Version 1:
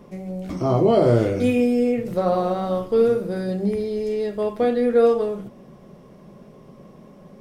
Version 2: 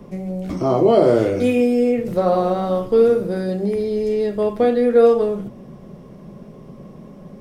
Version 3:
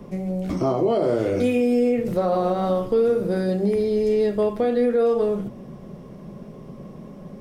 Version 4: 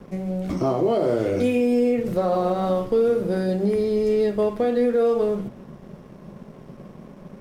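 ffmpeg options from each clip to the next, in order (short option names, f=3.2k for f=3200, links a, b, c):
-filter_complex "[0:a]lowshelf=f=330:g=7,bandreject=f=60:t=h:w=6,bandreject=f=120:t=h:w=6,acrossover=split=280|1200[a][b][c];[a]acompressor=threshold=-29dB:ratio=6[d];[d][b][c]amix=inputs=3:normalize=0,volume=2dB"
-af "alimiter=limit=-12.5dB:level=0:latency=1:release=144"
-af "aeval=exprs='sgn(val(0))*max(abs(val(0))-0.00422,0)':c=same"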